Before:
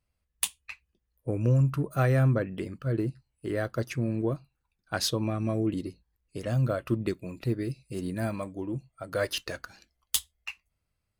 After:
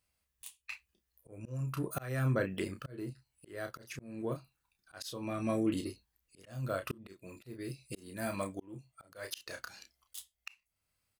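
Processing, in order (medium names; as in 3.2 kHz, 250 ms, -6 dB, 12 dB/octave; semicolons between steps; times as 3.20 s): tilt EQ +2 dB/octave; doubling 31 ms -7 dB; slow attack 489 ms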